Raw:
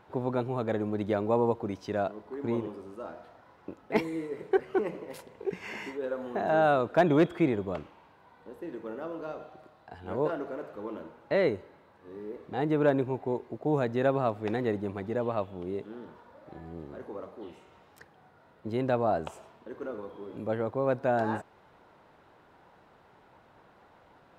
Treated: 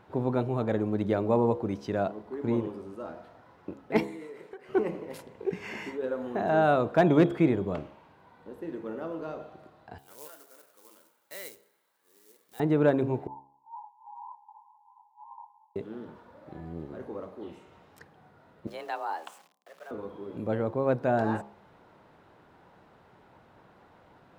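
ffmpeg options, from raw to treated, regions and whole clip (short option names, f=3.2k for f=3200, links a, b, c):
-filter_complex "[0:a]asettb=1/sr,asplit=3[a][b][c];[a]atrim=end=4.034[d];[b]atrim=start=4.03:end=4.69,asetpts=PTS-STARTPTS,afade=t=in:d=0.004:c=qsin,afade=t=out:st=0.656:d=0.004:c=qsin,highpass=f=770:p=1,acompressor=threshold=-40dB:ratio=16:attack=3.2:release=140:knee=1:detection=peak[e];[c]atrim=start=4.686[f];[d][e]acrossfade=d=0.004:c1=hsin:c2=qsin[g];[g][f]acrossfade=d=0.004:c1=qsin:c2=hsin,asettb=1/sr,asplit=3[h][i][j];[h]atrim=end=9.984[k];[i]atrim=start=9.98:end=12.6,asetpts=PTS-STARTPTS,afade=t=in:d=0.004:c=qsin,afade=t=out:st=2.616:d=0.004:c=qsin,bandreject=f=2.6k:w=20,acrusher=bits=5:mode=log:mix=0:aa=0.000001,aderivative[l];[j]atrim=start=12.596[m];[k][l]acrossfade=d=0.004:c1=hsin:c2=qsin[n];[n][m]acrossfade=d=0.004:c1=qsin:c2=hsin,asettb=1/sr,asplit=3[o][p][q];[o]atrim=end=13.274[r];[p]atrim=start=13.27:end=15.76,asetpts=PTS-STARTPTS,afade=t=in:d=0.004:c=qsin,afade=t=out:st=2.486:d=0.004:c=qsin,asuperpass=centerf=920:order=20:qfactor=4,flanger=delay=18:depth=3.7:speed=1.9[s];[q]atrim=start=15.756[t];[r][s]acrossfade=d=0.004:c1=hsin:c2=qsin[u];[u][t]acrossfade=d=0.004:c1=qsin:c2=hsin,asettb=1/sr,asplit=3[v][w][x];[v]atrim=end=18.674[y];[w]atrim=start=18.67:end=19.91,asetpts=PTS-STARTPTS,afade=t=in:d=0.004:c=qsin,afade=t=out:st=1.236:d=0.004:c=qsin,highpass=f=1.3k:p=1,aeval=exprs='val(0)*gte(abs(val(0)),0.00211)':c=same,afreqshift=160[z];[x]atrim=start=19.906[aa];[y][z]acrossfade=d=0.004:c1=hsin:c2=qsin[ab];[ab][aa]acrossfade=d=0.004:c1=qsin:c2=hsin,equalizer=f=150:t=o:w=2.7:g=4.5,bandreject=f=68.78:t=h:w=4,bandreject=f=137.56:t=h:w=4,bandreject=f=206.34:t=h:w=4,bandreject=f=275.12:t=h:w=4,bandreject=f=343.9:t=h:w=4,bandreject=f=412.68:t=h:w=4,bandreject=f=481.46:t=h:w=4,bandreject=f=550.24:t=h:w=4,bandreject=f=619.02:t=h:w=4,bandreject=f=687.8:t=h:w=4,bandreject=f=756.58:t=h:w=4,bandreject=f=825.36:t=h:w=4,bandreject=f=894.14:t=h:w=4,bandreject=f=962.92:t=h:w=4,bandreject=f=1.0317k:t=h:w=4,bandreject=f=1.10048k:t=h:w=4,bandreject=f=1.16926k:t=h:w=4"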